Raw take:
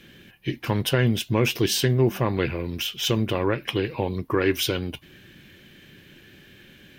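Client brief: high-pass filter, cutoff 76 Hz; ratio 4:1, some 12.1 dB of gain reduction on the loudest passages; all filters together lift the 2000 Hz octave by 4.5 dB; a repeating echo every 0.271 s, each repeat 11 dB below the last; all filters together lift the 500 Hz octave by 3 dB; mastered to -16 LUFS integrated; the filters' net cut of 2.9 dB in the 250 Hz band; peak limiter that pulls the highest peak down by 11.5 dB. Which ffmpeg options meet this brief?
-af "highpass=76,equalizer=f=250:t=o:g=-7.5,equalizer=f=500:t=o:g=6.5,equalizer=f=2k:t=o:g=5.5,acompressor=threshold=-30dB:ratio=4,alimiter=level_in=1.5dB:limit=-24dB:level=0:latency=1,volume=-1.5dB,aecho=1:1:271|542|813:0.282|0.0789|0.0221,volume=21dB"

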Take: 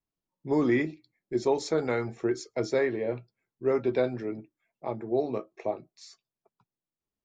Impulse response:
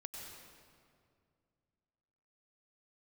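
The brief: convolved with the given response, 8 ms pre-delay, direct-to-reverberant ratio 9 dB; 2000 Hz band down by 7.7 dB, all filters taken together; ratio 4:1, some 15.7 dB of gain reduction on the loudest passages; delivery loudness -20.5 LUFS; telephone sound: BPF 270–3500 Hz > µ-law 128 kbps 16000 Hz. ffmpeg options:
-filter_complex "[0:a]equalizer=f=2k:t=o:g=-8.5,acompressor=threshold=-41dB:ratio=4,asplit=2[a][b];[1:a]atrim=start_sample=2205,adelay=8[c];[b][c]afir=irnorm=-1:irlink=0,volume=-6dB[d];[a][d]amix=inputs=2:normalize=0,highpass=270,lowpass=3.5k,volume=24dB" -ar 16000 -c:a pcm_mulaw

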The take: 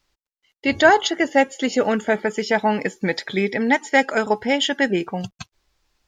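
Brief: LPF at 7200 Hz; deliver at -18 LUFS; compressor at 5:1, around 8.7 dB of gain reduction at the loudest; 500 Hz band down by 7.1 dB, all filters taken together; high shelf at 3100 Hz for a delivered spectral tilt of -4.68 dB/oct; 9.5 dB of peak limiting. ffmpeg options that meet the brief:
-af "lowpass=7.2k,equalizer=f=500:t=o:g=-9,highshelf=f=3.1k:g=-6,acompressor=threshold=-22dB:ratio=5,volume=14.5dB,alimiter=limit=-7.5dB:level=0:latency=1"

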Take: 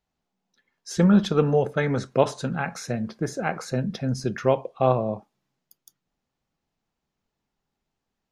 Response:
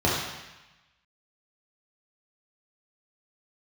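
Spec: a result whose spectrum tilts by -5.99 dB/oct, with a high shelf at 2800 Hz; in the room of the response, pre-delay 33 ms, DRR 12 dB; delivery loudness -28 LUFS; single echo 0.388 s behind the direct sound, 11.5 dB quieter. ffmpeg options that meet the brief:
-filter_complex "[0:a]highshelf=f=2.8k:g=-4.5,aecho=1:1:388:0.266,asplit=2[a][b];[1:a]atrim=start_sample=2205,adelay=33[c];[b][c]afir=irnorm=-1:irlink=0,volume=-28dB[d];[a][d]amix=inputs=2:normalize=0,volume=-4dB"

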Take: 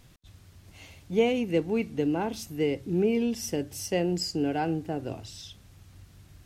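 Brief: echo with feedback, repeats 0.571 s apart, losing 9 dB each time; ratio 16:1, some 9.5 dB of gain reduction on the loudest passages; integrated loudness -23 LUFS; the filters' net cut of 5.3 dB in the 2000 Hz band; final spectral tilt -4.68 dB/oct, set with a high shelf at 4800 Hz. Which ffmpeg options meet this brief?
-af "equalizer=f=2k:t=o:g=-9,highshelf=f=4.8k:g=7.5,acompressor=threshold=-27dB:ratio=16,aecho=1:1:571|1142|1713|2284:0.355|0.124|0.0435|0.0152,volume=9.5dB"

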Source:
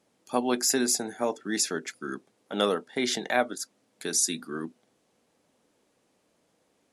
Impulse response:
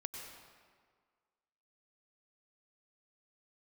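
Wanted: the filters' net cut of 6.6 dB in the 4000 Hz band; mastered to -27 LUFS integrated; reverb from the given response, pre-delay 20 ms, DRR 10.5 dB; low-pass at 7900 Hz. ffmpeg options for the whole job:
-filter_complex "[0:a]lowpass=7.9k,equalizer=f=4k:t=o:g=-8.5,asplit=2[a][b];[1:a]atrim=start_sample=2205,adelay=20[c];[b][c]afir=irnorm=-1:irlink=0,volume=-9dB[d];[a][d]amix=inputs=2:normalize=0,volume=3dB"

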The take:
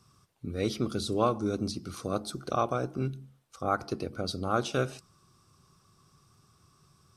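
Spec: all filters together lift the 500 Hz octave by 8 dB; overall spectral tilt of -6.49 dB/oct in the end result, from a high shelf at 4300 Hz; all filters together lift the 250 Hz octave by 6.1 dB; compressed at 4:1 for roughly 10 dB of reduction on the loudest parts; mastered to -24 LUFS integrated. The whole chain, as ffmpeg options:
-af "equalizer=f=250:t=o:g=5,equalizer=f=500:t=o:g=8.5,highshelf=f=4.3k:g=-7,acompressor=threshold=-28dB:ratio=4,volume=10dB"

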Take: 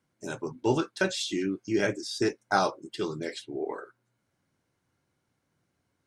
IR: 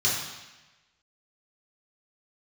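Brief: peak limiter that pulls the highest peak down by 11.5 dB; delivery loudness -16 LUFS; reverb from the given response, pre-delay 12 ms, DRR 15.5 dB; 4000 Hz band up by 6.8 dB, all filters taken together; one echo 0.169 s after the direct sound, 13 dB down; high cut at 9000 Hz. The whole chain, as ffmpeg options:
-filter_complex "[0:a]lowpass=9k,equalizer=f=4k:t=o:g=8.5,alimiter=limit=-19dB:level=0:latency=1,aecho=1:1:169:0.224,asplit=2[a][b];[1:a]atrim=start_sample=2205,adelay=12[c];[b][c]afir=irnorm=-1:irlink=0,volume=-27.5dB[d];[a][d]amix=inputs=2:normalize=0,volume=15dB"

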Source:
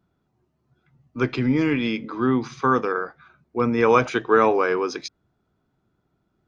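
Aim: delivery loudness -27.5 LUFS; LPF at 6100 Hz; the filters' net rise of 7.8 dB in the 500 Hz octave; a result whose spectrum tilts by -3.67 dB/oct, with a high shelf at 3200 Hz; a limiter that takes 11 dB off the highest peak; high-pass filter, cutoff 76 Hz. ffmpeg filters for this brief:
-af "highpass=76,lowpass=6.1k,equalizer=f=500:t=o:g=9,highshelf=f=3.2k:g=-3.5,volume=-6dB,alimiter=limit=-17dB:level=0:latency=1"

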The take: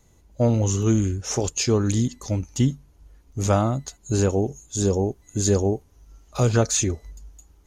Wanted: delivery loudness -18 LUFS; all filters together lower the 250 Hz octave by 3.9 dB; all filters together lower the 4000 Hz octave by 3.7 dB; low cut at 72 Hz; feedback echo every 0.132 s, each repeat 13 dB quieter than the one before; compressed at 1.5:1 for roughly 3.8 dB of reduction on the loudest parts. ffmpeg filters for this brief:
-af "highpass=72,equalizer=f=250:t=o:g=-5,equalizer=f=4k:t=o:g=-5,acompressor=threshold=-27dB:ratio=1.5,aecho=1:1:132|264|396:0.224|0.0493|0.0108,volume=10dB"

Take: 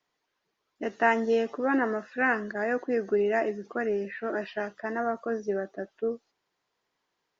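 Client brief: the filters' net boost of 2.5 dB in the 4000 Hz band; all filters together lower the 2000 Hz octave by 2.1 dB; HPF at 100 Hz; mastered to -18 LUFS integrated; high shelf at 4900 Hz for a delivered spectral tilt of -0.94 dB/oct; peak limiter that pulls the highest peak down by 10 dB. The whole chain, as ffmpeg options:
-af "highpass=100,equalizer=f=2k:t=o:g=-3.5,equalizer=f=4k:t=o:g=8.5,highshelf=f=4.9k:g=-5.5,volume=13.5dB,alimiter=limit=-7dB:level=0:latency=1"

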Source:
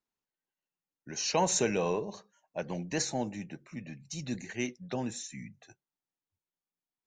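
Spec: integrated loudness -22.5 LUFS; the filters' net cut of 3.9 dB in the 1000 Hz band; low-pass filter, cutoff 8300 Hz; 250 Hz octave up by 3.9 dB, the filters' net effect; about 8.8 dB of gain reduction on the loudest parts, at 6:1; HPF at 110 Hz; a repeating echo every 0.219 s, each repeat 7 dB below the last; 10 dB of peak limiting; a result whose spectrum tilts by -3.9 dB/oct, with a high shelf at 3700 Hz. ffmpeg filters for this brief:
-af "highpass=110,lowpass=8.3k,equalizer=f=250:t=o:g=5.5,equalizer=f=1k:t=o:g=-5.5,highshelf=f=3.7k:g=5,acompressor=threshold=-32dB:ratio=6,alimiter=level_in=8dB:limit=-24dB:level=0:latency=1,volume=-8dB,aecho=1:1:219|438|657|876|1095:0.447|0.201|0.0905|0.0407|0.0183,volume=18.5dB"

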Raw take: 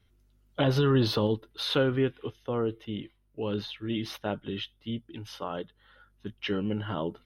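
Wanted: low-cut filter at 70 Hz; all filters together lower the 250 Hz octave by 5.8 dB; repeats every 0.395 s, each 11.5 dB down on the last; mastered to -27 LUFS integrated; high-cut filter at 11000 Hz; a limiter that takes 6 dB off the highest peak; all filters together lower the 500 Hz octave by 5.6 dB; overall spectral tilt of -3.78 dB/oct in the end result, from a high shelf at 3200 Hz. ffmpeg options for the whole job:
-af "highpass=70,lowpass=11k,equalizer=f=250:t=o:g=-6,equalizer=f=500:t=o:g=-5,highshelf=f=3.2k:g=5.5,alimiter=limit=-20.5dB:level=0:latency=1,aecho=1:1:395|790|1185:0.266|0.0718|0.0194,volume=7dB"

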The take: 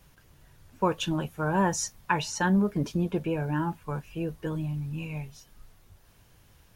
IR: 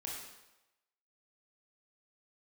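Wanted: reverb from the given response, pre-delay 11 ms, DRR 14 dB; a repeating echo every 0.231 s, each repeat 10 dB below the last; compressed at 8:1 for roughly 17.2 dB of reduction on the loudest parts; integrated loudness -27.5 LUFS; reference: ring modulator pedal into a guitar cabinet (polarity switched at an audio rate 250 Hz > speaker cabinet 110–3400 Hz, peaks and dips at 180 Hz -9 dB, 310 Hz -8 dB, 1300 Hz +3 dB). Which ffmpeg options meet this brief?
-filter_complex "[0:a]acompressor=threshold=-38dB:ratio=8,aecho=1:1:231|462|693|924:0.316|0.101|0.0324|0.0104,asplit=2[a][b];[1:a]atrim=start_sample=2205,adelay=11[c];[b][c]afir=irnorm=-1:irlink=0,volume=-13.5dB[d];[a][d]amix=inputs=2:normalize=0,aeval=exprs='val(0)*sgn(sin(2*PI*250*n/s))':c=same,highpass=110,equalizer=f=180:t=q:w=4:g=-9,equalizer=f=310:t=q:w=4:g=-8,equalizer=f=1.3k:t=q:w=4:g=3,lowpass=f=3.4k:w=0.5412,lowpass=f=3.4k:w=1.3066,volume=16dB"

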